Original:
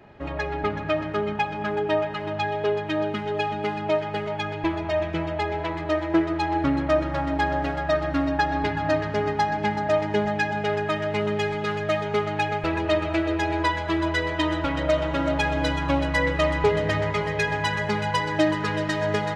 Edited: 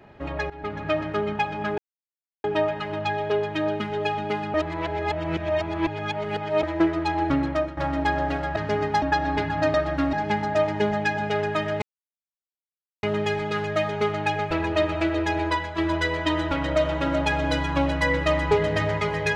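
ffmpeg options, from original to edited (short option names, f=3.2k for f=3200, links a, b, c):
-filter_complex "[0:a]asplit=12[a][b][c][d][e][f][g][h][i][j][k][l];[a]atrim=end=0.5,asetpts=PTS-STARTPTS,afade=t=out:st=0.496:d=0.004:c=hsin:silence=0.149624[m];[b]atrim=start=0.5:end=1.78,asetpts=PTS-STARTPTS,afade=t=in:d=0.4:silence=0.149624,afade=t=out:st=1.276:d=0.004:c=hsin,apad=pad_dur=0.66[n];[c]atrim=start=1.78:end=3.882,asetpts=PTS-STARTPTS,afade=t=in:d=0.004:c=hsin[o];[d]atrim=start=3.878:end=5.972,asetpts=PTS-STARTPTS,areverse[p];[e]atrim=start=5.968:end=7.11,asetpts=PTS-STARTPTS,afade=t=out:st=0.682:d=0.46:c=qsin:silence=0.199526[q];[f]atrim=start=7.11:end=7.902,asetpts=PTS-STARTPTS,afade=t=in:d=0.004:c=hsin:silence=0.199526[r];[g]atrim=start=9.008:end=9.472[s];[h]atrim=start=8.288:end=9.012[t];[i]atrim=start=7.898:end=8.292[u];[j]atrim=start=9.468:end=11.16,asetpts=PTS-STARTPTS,afade=t=out:st=1.688:d=0.004:c=hsin,apad=pad_dur=1.21[v];[k]atrim=start=11.16:end=13.91,asetpts=PTS-STARTPTS,afade=t=in:d=0.004:c=hsin,afade=t=out:st=2.38:d=0.37:silence=0.501187[w];[l]atrim=start=13.91,asetpts=PTS-STARTPTS,afade=t=in:d=0.004:c=hsin:silence=0.501187[x];[m][n][o]concat=n=3:v=0:a=1[y];[y][p]acrossfade=d=0.004:c1=hsin:c2=hsin[z];[q][r]concat=n=2:v=0:a=1[aa];[z][aa]acrossfade=d=0.004:c1=hsin:c2=hsin[ab];[ab][s]acrossfade=d=0.004:c1=hsin:c2=hsin[ac];[ac][t]acrossfade=d=0.004:c1=hsin:c2=hsin[ad];[ad][u]acrossfade=d=0.004:c1=hsin:c2=hsin[ae];[v][w][x]concat=n=3:v=0:a=1[af];[ae][af]acrossfade=d=0.004:c1=hsin:c2=hsin"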